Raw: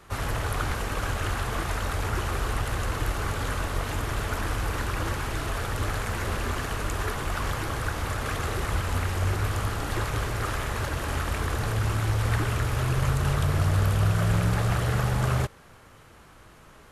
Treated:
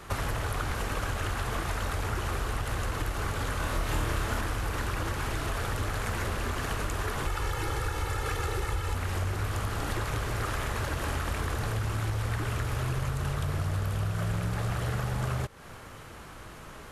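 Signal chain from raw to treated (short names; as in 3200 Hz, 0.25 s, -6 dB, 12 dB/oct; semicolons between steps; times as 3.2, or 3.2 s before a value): 7.26–8.95 comb 2.3 ms, depth 69%; compressor 6:1, threshold -34 dBFS, peak gain reduction 14.5 dB; 3.57–4.41 flutter echo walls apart 4.6 m, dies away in 0.34 s; gain +6 dB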